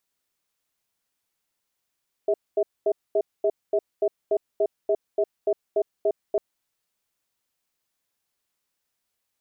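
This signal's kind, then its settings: cadence 407 Hz, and 643 Hz, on 0.06 s, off 0.23 s, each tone -21 dBFS 4.10 s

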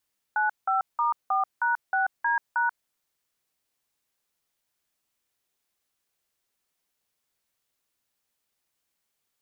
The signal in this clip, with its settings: DTMF "95*4#6D#", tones 136 ms, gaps 178 ms, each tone -24 dBFS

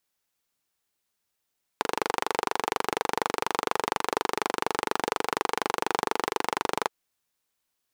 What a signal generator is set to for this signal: single-cylinder engine model, steady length 5.08 s, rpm 2900, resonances 450/850 Hz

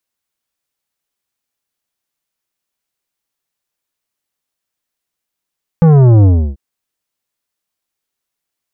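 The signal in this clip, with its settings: sub drop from 170 Hz, over 0.74 s, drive 11.5 dB, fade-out 0.32 s, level -5 dB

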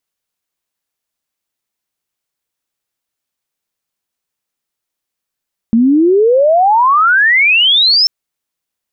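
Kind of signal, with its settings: sweep logarithmic 220 Hz -> 5.4 kHz -6 dBFS -> -6.5 dBFS 2.34 s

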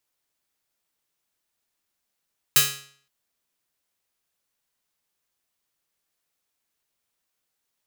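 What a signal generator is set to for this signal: plucked string C#3, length 0.52 s, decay 0.54 s, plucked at 0.48, bright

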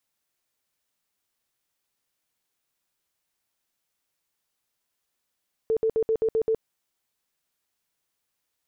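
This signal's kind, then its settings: tone bursts 445 Hz, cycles 30, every 0.13 s, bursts 7, -19.5 dBFS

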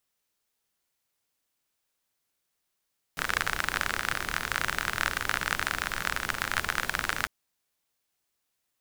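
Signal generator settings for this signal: rain from filtered ticks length 4.10 s, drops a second 40, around 1.5 kHz, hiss -7.5 dB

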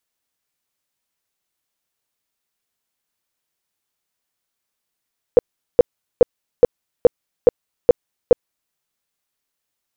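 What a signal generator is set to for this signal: tone bursts 487 Hz, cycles 9, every 0.42 s, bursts 8, -3.5 dBFS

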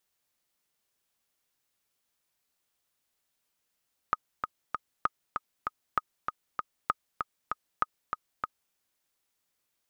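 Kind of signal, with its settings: metronome 195 bpm, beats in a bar 3, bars 5, 1.25 kHz, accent 5.5 dB -11.5 dBFS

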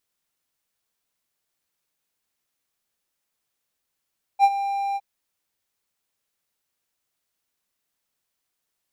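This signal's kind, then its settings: ADSR triangle 795 Hz, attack 50 ms, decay 50 ms, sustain -13 dB, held 0.57 s, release 41 ms -8 dBFS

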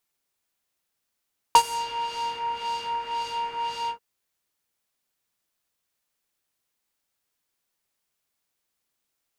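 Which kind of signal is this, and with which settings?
synth patch with filter wobble A#5, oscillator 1 triangle, oscillator 2 square, interval 0 st, oscillator 2 level -2.5 dB, sub -15 dB, noise -4 dB, filter lowpass, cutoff 1.4 kHz, Q 1.1, filter envelope 2.5 oct, filter decay 0.66 s, filter sustain 45%, attack 1 ms, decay 0.07 s, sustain -17 dB, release 0.10 s, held 2.34 s, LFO 1.9 Hz, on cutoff 0.6 oct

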